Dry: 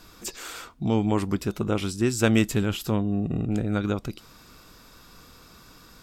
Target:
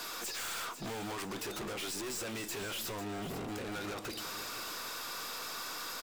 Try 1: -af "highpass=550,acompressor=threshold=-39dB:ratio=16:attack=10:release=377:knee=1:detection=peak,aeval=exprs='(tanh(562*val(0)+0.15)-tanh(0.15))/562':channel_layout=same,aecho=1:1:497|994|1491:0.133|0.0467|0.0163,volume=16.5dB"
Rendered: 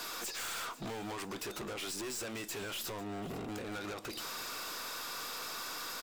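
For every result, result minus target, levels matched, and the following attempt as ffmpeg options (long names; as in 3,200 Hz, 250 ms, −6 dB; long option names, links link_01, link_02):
downward compressor: peak gain reduction +6 dB; echo-to-direct −6.5 dB
-af "highpass=550,acompressor=threshold=-32.5dB:ratio=16:attack=10:release=377:knee=1:detection=peak,aeval=exprs='(tanh(562*val(0)+0.15)-tanh(0.15))/562':channel_layout=same,aecho=1:1:497|994|1491:0.133|0.0467|0.0163,volume=16.5dB"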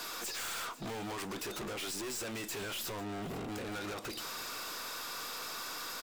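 echo-to-direct −6.5 dB
-af "highpass=550,acompressor=threshold=-32.5dB:ratio=16:attack=10:release=377:knee=1:detection=peak,aeval=exprs='(tanh(562*val(0)+0.15)-tanh(0.15))/562':channel_layout=same,aecho=1:1:497|994|1491|1988:0.282|0.0986|0.0345|0.0121,volume=16.5dB"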